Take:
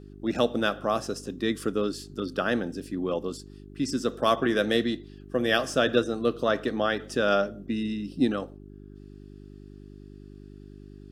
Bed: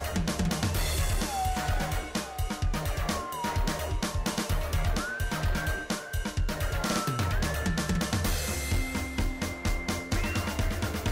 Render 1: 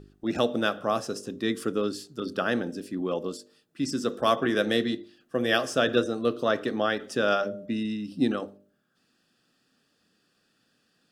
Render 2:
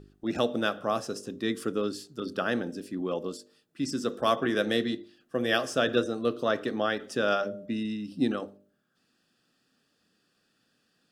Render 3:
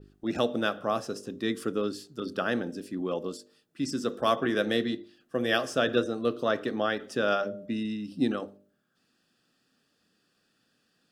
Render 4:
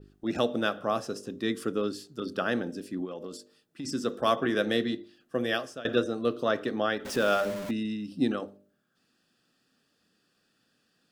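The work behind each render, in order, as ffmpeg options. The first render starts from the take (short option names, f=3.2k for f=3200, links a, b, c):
-af "bandreject=f=50:t=h:w=4,bandreject=f=100:t=h:w=4,bandreject=f=150:t=h:w=4,bandreject=f=200:t=h:w=4,bandreject=f=250:t=h:w=4,bandreject=f=300:t=h:w=4,bandreject=f=350:t=h:w=4,bandreject=f=400:t=h:w=4,bandreject=f=450:t=h:w=4,bandreject=f=500:t=h:w=4,bandreject=f=550:t=h:w=4,bandreject=f=600:t=h:w=4"
-af "volume=-2dB"
-af "adynamicequalizer=threshold=0.00282:dfrequency=8000:dqfactor=0.7:tfrequency=8000:tqfactor=0.7:attack=5:release=100:ratio=0.375:range=2:mode=cutabove:tftype=bell"
-filter_complex "[0:a]asplit=3[a][b][c];[a]afade=t=out:st=3.04:d=0.02[d];[b]acompressor=threshold=-34dB:ratio=6:attack=3.2:release=140:knee=1:detection=peak,afade=t=in:st=3.04:d=0.02,afade=t=out:st=3.84:d=0.02[e];[c]afade=t=in:st=3.84:d=0.02[f];[d][e][f]amix=inputs=3:normalize=0,asettb=1/sr,asplit=3[g][h][i];[g]atrim=end=7.054[j];[h]atrim=start=7.05:end=7.71,asetpts=PTS-STARTPTS,afade=t=in:d=0.004:c=qsin,afade=t=out:st=0.656:d=0.004:c=qsin,aeval=exprs='val(0)+0.5*0.0211*sgn(val(0))':c=same[k];[i]atrim=start=7.706[l];[j][k]acrossfade=d=0.004:c1=hsin:c2=qsin[m];[m][l]acrossfade=d=0.004:c1=qsin:c2=hsin,asplit=2[n][o];[n]atrim=end=5.85,asetpts=PTS-STARTPTS,afade=t=out:st=5.38:d=0.47:silence=0.0841395[p];[o]atrim=start=5.85,asetpts=PTS-STARTPTS,afade=t=in:d=0.004:c=hsin:silence=0.0841395[q];[p][q]concat=n=2:v=0:a=1"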